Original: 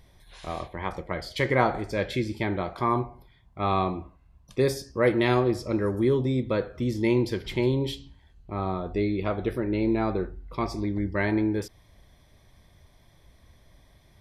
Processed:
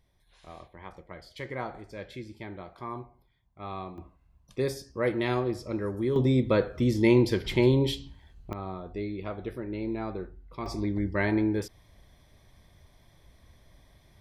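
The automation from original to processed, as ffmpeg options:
ffmpeg -i in.wav -af "asetnsamples=nb_out_samples=441:pad=0,asendcmd='3.98 volume volume -5.5dB;6.16 volume volume 2.5dB;8.53 volume volume -8dB;10.66 volume volume -1dB',volume=-13dB" out.wav

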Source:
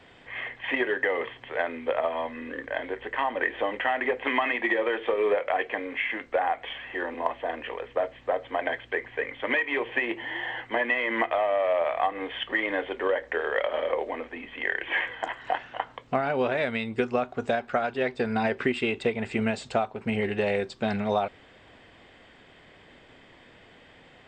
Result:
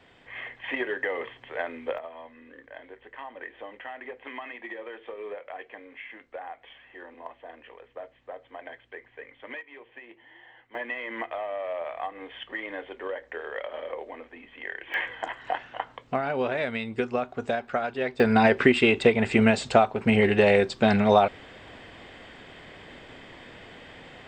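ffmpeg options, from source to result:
ffmpeg -i in.wav -af "asetnsamples=nb_out_samples=441:pad=0,asendcmd='1.98 volume volume -13.5dB;9.61 volume volume -19.5dB;10.75 volume volume -8dB;14.94 volume volume -1.5dB;18.2 volume volume 7dB',volume=-3.5dB" out.wav

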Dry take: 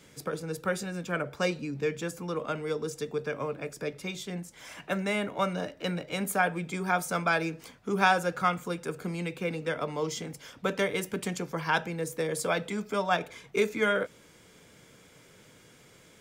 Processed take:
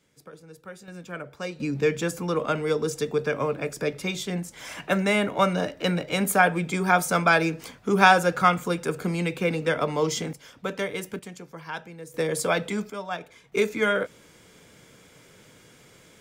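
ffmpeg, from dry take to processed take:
ffmpeg -i in.wav -af "asetnsamples=nb_out_samples=441:pad=0,asendcmd='0.88 volume volume -5dB;1.6 volume volume 7dB;10.33 volume volume -1dB;11.19 volume volume -8dB;12.14 volume volume 4.5dB;12.9 volume volume -5.5dB;13.52 volume volume 3dB',volume=-12dB" out.wav

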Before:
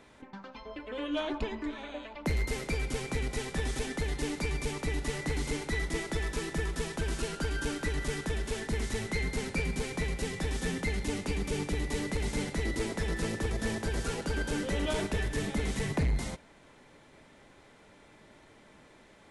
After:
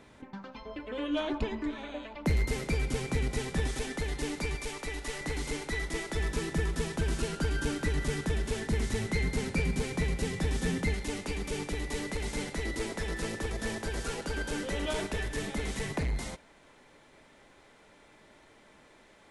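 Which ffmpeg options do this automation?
ffmpeg -i in.wav -af "asetnsamples=nb_out_samples=441:pad=0,asendcmd='3.67 equalizer g -2;4.55 equalizer g -12.5;5.21 equalizer g -4.5;6.17 equalizer g 4.5;10.94 equalizer g -5',equalizer=frequency=120:width_type=o:width=2.6:gain=4.5" out.wav

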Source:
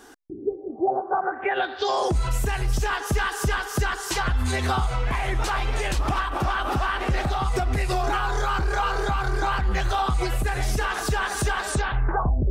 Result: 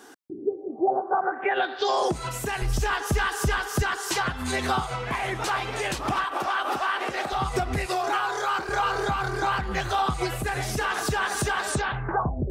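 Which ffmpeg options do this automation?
ffmpeg -i in.wav -af "asetnsamples=nb_out_samples=441:pad=0,asendcmd='2.62 highpass f 43;3.82 highpass f 140;6.24 highpass f 370;7.32 highpass f 90;7.86 highpass f 340;8.69 highpass f 100',highpass=160" out.wav

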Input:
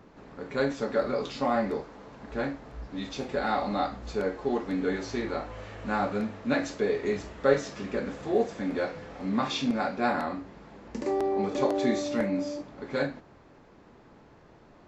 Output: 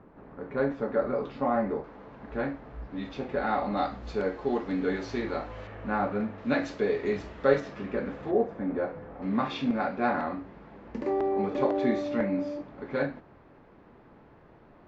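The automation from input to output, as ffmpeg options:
ffmpeg -i in.wav -af "asetnsamples=nb_out_samples=441:pad=0,asendcmd='1.84 lowpass f 2500;3.77 lowpass f 4400;5.67 lowpass f 2200;6.38 lowpass f 4100;7.6 lowpass f 2500;8.31 lowpass f 1300;9.22 lowpass f 2600',lowpass=1600" out.wav

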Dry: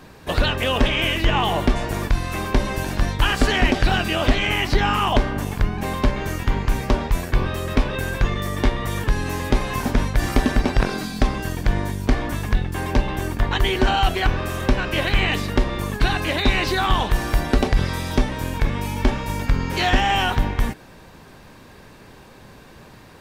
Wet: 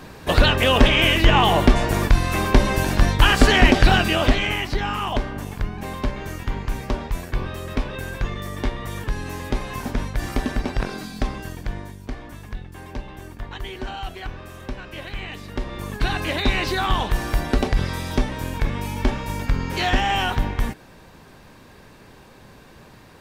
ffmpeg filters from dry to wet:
ffmpeg -i in.wav -af "volume=15dB,afade=type=out:start_time=3.87:duration=0.83:silence=0.334965,afade=type=out:start_time=11.31:duration=0.68:silence=0.421697,afade=type=in:start_time=15.4:duration=0.8:silence=0.281838" out.wav

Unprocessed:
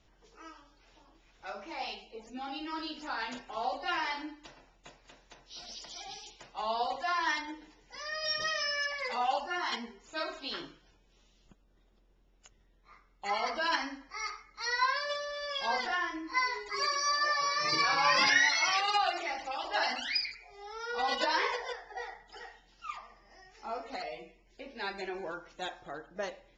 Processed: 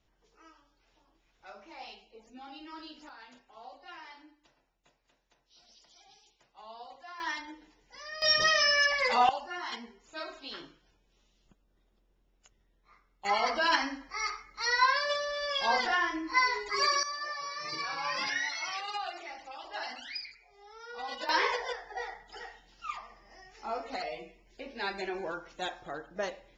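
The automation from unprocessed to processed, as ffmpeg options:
ffmpeg -i in.wav -af "asetnsamples=nb_out_samples=441:pad=0,asendcmd='3.09 volume volume -15dB;7.2 volume volume -4dB;8.22 volume volume 8dB;9.29 volume volume -4dB;13.25 volume volume 4dB;17.03 volume volume -8dB;21.29 volume volume 2.5dB',volume=-7.5dB" out.wav

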